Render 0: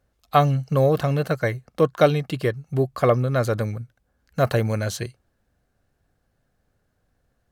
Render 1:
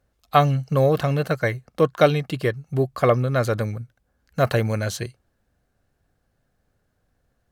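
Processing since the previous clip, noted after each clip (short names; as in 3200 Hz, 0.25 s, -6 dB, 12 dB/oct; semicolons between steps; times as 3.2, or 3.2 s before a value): dynamic EQ 2400 Hz, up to +3 dB, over -33 dBFS, Q 0.74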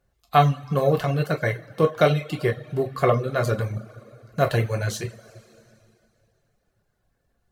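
two-slope reverb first 0.5 s, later 2.6 s, from -16 dB, DRR 1.5 dB; reverb removal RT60 0.54 s; gain -2.5 dB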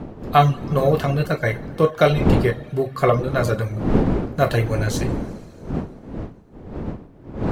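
wind noise 300 Hz -28 dBFS; gain +2.5 dB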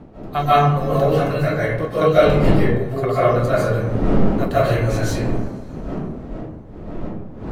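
digital reverb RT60 0.93 s, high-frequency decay 0.45×, pre-delay 0.11 s, DRR -10 dB; gain -8.5 dB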